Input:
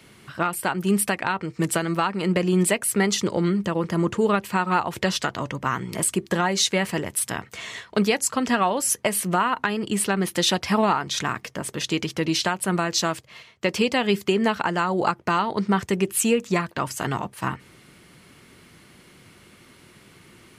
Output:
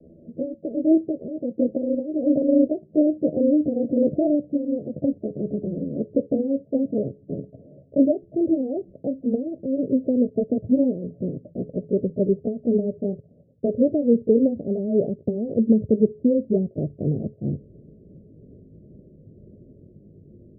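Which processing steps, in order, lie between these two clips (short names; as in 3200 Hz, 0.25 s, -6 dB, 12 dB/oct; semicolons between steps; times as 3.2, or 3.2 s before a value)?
gliding pitch shift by +8.5 st ending unshifted; steep low-pass 630 Hz 96 dB/oct; low shelf 200 Hz +8.5 dB; resonator 420 Hz, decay 0.4 s, harmonics odd, mix 50%; gain +8.5 dB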